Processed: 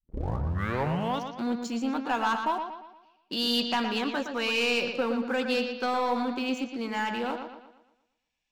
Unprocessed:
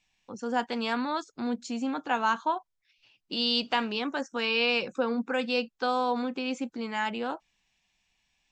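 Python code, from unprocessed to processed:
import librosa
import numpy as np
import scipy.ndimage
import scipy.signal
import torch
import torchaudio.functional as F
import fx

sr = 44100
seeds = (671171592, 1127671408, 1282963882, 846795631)

y = fx.tape_start_head(x, sr, length_s=1.39)
y = fx.leveller(y, sr, passes=2)
y = fx.echo_bbd(y, sr, ms=117, stages=4096, feedback_pct=44, wet_db=-7.0)
y = F.gain(torch.from_numpy(y), -6.5).numpy()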